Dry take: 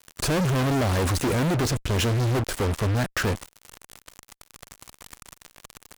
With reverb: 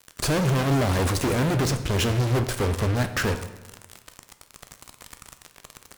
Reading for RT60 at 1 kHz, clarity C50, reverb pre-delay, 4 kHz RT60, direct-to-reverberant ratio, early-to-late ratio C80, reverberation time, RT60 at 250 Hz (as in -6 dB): 1.1 s, 11.0 dB, 9 ms, 0.80 s, 8.5 dB, 13.0 dB, 1.1 s, 1.2 s